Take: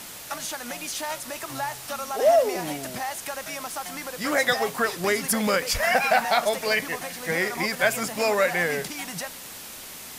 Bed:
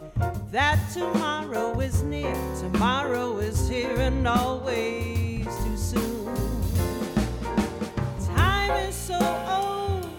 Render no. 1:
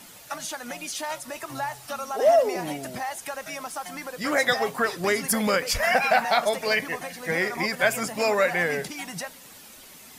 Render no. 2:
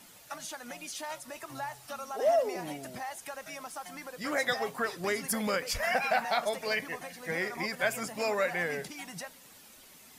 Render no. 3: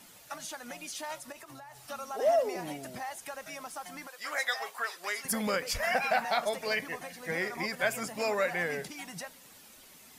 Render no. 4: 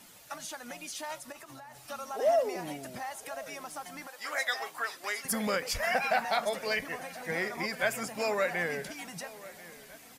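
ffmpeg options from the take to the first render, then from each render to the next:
-af "afftdn=nr=9:nf=-40"
-af "volume=-7.5dB"
-filter_complex "[0:a]asettb=1/sr,asplit=3[a][b][c];[a]atrim=end=1.324[d];[b]atrim=start=1.32:end=1.79,asetpts=PTS-STARTPTS,afade=t=in:d=0.004:c=qsin,afade=t=out:st=0.466:d=0.004:c=qsin,acompressor=threshold=-44dB:ratio=16:attack=3.2:release=140:knee=1:detection=peak[e];[c]atrim=start=1.786[f];[d][e]acrossfade=d=0.004:c1=hsin:c2=qsin[g];[g][f]acrossfade=d=0.004:c1=qsin:c2=hsin,asettb=1/sr,asplit=3[h][i][j];[h]atrim=end=4.074[k];[i]atrim=start=4.07:end=5.25,asetpts=PTS-STARTPTS,afade=t=in:d=0.004:c=qsin,afade=t=out:st=1.176:d=0.004:c=qsin,highpass=840[l];[j]atrim=start=5.246[m];[k][l]acrossfade=d=0.004:c1=hsin:c2=qsin[n];[n][m]acrossfade=d=0.004:c1=qsin:c2=hsin"
-filter_complex "[0:a]asplit=2[a][b];[b]adelay=1039,lowpass=f=4.2k:p=1,volume=-18.5dB,asplit=2[c][d];[d]adelay=1039,lowpass=f=4.2k:p=1,volume=0.55,asplit=2[e][f];[f]adelay=1039,lowpass=f=4.2k:p=1,volume=0.55,asplit=2[g][h];[h]adelay=1039,lowpass=f=4.2k:p=1,volume=0.55,asplit=2[i][j];[j]adelay=1039,lowpass=f=4.2k:p=1,volume=0.55[k];[a][c][e][g][i][k]amix=inputs=6:normalize=0"

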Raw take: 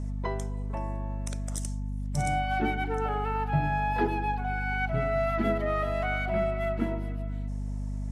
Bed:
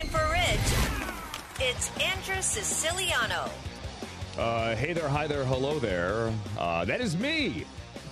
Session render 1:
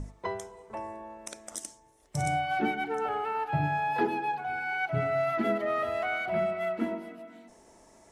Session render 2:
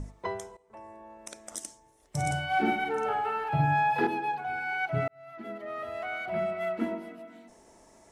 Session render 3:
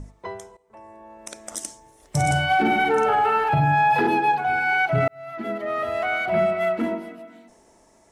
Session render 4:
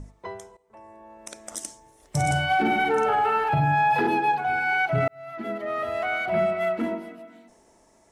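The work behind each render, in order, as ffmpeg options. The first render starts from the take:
-af "bandreject=f=50:t=h:w=6,bandreject=f=100:t=h:w=6,bandreject=f=150:t=h:w=6,bandreject=f=200:t=h:w=6,bandreject=f=250:t=h:w=6"
-filter_complex "[0:a]asettb=1/sr,asplit=3[a][b][c];[a]atrim=end=2.264[d];[b]atrim=start=2.26:end=4.07,asetpts=PTS-STARTPTS,afade=t=in:d=0.004:c=qsin,afade=t=out:st=1.806:d=0.004:c=qsin,asplit=2[e][f];[f]adelay=49,volume=-2.5dB[g];[e][g]amix=inputs=2:normalize=0,atrim=end_sample=79821[h];[c]atrim=start=4.066[i];[d][h]acrossfade=d=0.004:c1=hsin:c2=qsin[j];[j][i]acrossfade=d=0.004:c1=qsin:c2=hsin,asplit=3[k][l][m];[k]atrim=end=0.57,asetpts=PTS-STARTPTS,afade=t=out:st=0.566:d=0.004:c=hsin:silence=0.141254[n];[l]atrim=start=0.57:end=5.08,asetpts=PTS-STARTPTS,afade=t=in:d=0.97:silence=0.141254,afade=t=out:st=4.506:d=0.004:c=hsin[o];[m]atrim=start=5.08,asetpts=PTS-STARTPTS,afade=t=in:d=1.65[p];[n][o][p]concat=n=3:v=0:a=1"
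-af "alimiter=limit=-23dB:level=0:latency=1:release=13,dynaudnorm=f=220:g=13:m=11dB"
-af "volume=-2.5dB"

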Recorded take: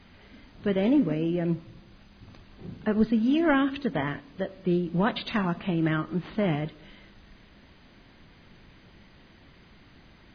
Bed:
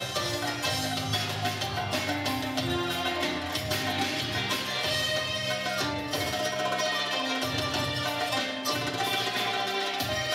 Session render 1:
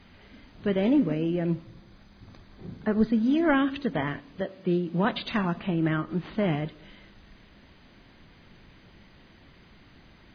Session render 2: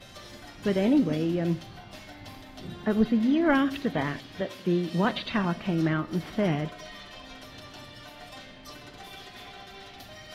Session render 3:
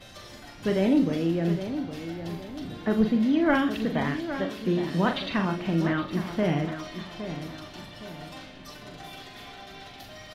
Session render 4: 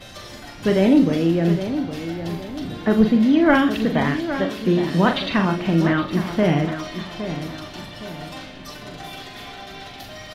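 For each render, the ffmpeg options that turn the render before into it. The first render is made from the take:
-filter_complex "[0:a]asettb=1/sr,asplit=3[a][b][c];[a]atrim=end=1.624[d];[b]atrim=start=1.62:end=3.53,asetpts=PTS-STARTPTS,afade=t=in:d=0.004:c=qsin,afade=t=out:st=1.906:d=0.004:c=qsin,equalizer=f=2.8k:w=6.6:g=-8.5[e];[c]atrim=start=3.526[f];[d][e]acrossfade=d=0.004:c1=hsin:c2=qsin[g];[g][f]acrossfade=d=0.004:c1=qsin:c2=hsin,asettb=1/sr,asplit=3[h][i][j];[h]atrim=end=4.414[k];[i]atrim=start=4.41:end=5.05,asetpts=PTS-STARTPTS,afade=t=in:d=0.004:c=qsin,afade=t=out:st=0.636:d=0.004:c=qsin,highpass=120[l];[j]atrim=start=5.046[m];[k][l]acrossfade=d=0.004:c1=hsin:c2=qsin[n];[n][m]acrossfade=d=0.004:c1=qsin:c2=hsin,asettb=1/sr,asplit=3[o][p][q];[o]atrim=end=5.664[r];[p]atrim=start=5.66:end=6.1,asetpts=PTS-STARTPTS,afade=t=in:d=0.004:c=qsin,afade=t=out:st=0.436:d=0.004:c=qsin,highshelf=f=4.1k:g=-7.5[s];[q]atrim=start=6.096[t];[r][s]acrossfade=d=0.004:c1=hsin:c2=qsin[u];[u][t]acrossfade=d=0.004:c1=qsin:c2=hsin"
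-filter_complex "[1:a]volume=-16.5dB[a];[0:a][a]amix=inputs=2:normalize=0"
-filter_complex "[0:a]asplit=2[a][b];[b]adelay=42,volume=-7.5dB[c];[a][c]amix=inputs=2:normalize=0,asplit=2[d][e];[e]adelay=814,lowpass=f=3.4k:p=1,volume=-10dB,asplit=2[f][g];[g]adelay=814,lowpass=f=3.4k:p=1,volume=0.4,asplit=2[h][i];[i]adelay=814,lowpass=f=3.4k:p=1,volume=0.4,asplit=2[j][k];[k]adelay=814,lowpass=f=3.4k:p=1,volume=0.4[l];[d][f][h][j][l]amix=inputs=5:normalize=0"
-af "volume=7dB"

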